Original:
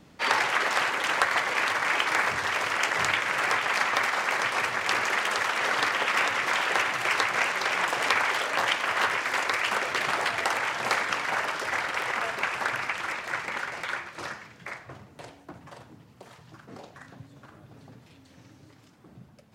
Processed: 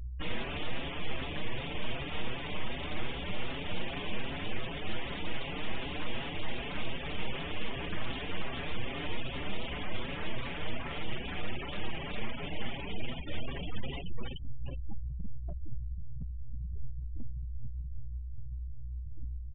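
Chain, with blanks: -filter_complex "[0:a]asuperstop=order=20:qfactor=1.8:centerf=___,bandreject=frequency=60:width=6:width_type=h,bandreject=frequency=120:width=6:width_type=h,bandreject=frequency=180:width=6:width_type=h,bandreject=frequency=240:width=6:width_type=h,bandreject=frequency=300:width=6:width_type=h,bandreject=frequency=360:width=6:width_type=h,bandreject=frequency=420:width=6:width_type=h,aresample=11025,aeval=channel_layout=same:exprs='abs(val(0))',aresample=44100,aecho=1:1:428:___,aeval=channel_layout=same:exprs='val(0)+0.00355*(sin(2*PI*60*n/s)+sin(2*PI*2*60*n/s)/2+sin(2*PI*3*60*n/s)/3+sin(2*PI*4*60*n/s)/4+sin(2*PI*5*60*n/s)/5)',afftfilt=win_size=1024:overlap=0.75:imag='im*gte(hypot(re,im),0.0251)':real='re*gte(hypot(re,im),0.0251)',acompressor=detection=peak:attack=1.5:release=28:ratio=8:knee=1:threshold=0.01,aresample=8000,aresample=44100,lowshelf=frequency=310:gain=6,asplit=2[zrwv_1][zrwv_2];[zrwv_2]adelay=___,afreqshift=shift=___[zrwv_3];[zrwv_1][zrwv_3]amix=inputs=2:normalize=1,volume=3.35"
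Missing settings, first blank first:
2600, 0.398, 5.8, 2.6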